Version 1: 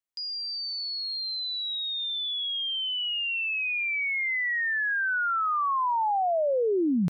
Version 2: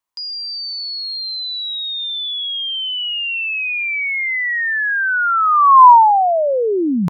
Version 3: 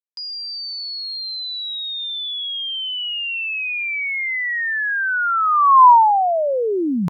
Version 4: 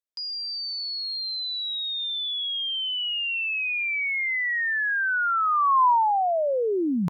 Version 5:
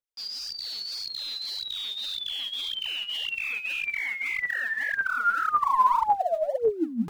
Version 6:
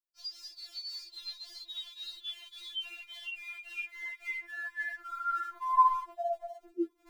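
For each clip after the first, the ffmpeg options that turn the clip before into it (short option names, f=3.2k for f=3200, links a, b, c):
-af "equalizer=f=1k:w=3:g=14.5,volume=7dB"
-af "acrusher=bits=10:mix=0:aa=0.000001,volume=-3dB"
-af "acompressor=threshold=-21dB:ratio=2,volume=-2.5dB"
-af "aphaser=in_gain=1:out_gain=1:delay=5:decay=0.8:speed=1.8:type=sinusoidal,volume=-8dB"
-af "afftfilt=real='re*4*eq(mod(b,16),0)':imag='im*4*eq(mod(b,16),0)':win_size=2048:overlap=0.75,volume=-7.5dB"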